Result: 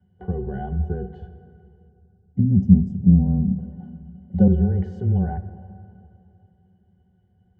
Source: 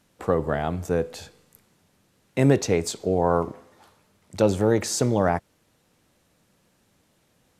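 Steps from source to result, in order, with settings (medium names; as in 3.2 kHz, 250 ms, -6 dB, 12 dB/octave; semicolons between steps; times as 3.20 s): high-pass 45 Hz 12 dB/octave; RIAA curve playback; 1.89–3.58 s: time-frequency box 290–4800 Hz -21 dB; graphic EQ with 31 bands 160 Hz +7 dB, 630 Hz +9 dB, 2 kHz +7 dB, 3.15 kHz +4 dB; peak limiter -10.5 dBFS, peak gain reduction 10 dB; frequency shift -16 Hz; pitch-class resonator F#, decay 0.12 s; 2.39–4.48 s: small resonant body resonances 220/550 Hz, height 16 dB, ringing for 35 ms; reverberation RT60 2.8 s, pre-delay 8 ms, DRR 12 dB; trim +3 dB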